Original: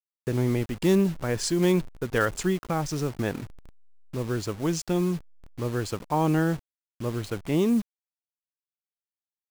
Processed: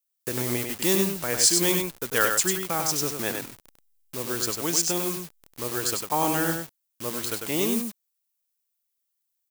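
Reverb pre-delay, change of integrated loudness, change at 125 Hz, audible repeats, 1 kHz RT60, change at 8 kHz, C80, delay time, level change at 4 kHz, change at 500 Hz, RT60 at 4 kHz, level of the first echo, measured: no reverb audible, +2.5 dB, −8.0 dB, 1, no reverb audible, +13.5 dB, no reverb audible, 98 ms, +9.0 dB, −1.5 dB, no reverb audible, −5.0 dB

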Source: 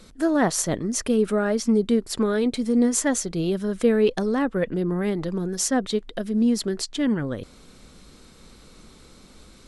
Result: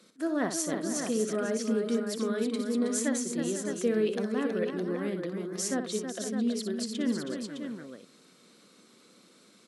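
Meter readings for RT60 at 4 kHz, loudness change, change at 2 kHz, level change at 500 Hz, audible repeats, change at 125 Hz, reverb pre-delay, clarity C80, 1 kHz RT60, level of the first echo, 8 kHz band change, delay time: no reverb audible, −7.5 dB, −6.5 dB, −7.0 dB, 4, −10.5 dB, no reverb audible, no reverb audible, no reverb audible, −8.5 dB, −6.5 dB, 60 ms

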